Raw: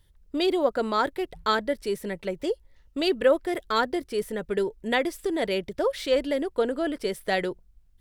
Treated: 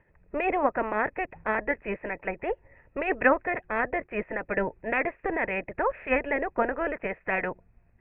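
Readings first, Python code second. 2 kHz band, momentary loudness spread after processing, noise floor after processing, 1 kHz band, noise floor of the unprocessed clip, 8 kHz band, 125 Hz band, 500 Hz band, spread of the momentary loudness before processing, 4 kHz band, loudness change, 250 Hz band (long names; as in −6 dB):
+4.5 dB, 8 LU, −64 dBFS, +0.5 dB, −59 dBFS, below −35 dB, −1.0 dB, −4.0 dB, 7 LU, below −20 dB, −2.0 dB, −4.5 dB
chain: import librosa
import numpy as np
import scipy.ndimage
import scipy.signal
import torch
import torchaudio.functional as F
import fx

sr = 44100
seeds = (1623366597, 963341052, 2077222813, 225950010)

y = fx.spec_clip(x, sr, under_db=20)
y = scipy.signal.sosfilt(scipy.signal.cheby1(6, 6, 2600.0, 'lowpass', fs=sr, output='sos'), y)
y = y * 10.0 ** (2.0 / 20.0)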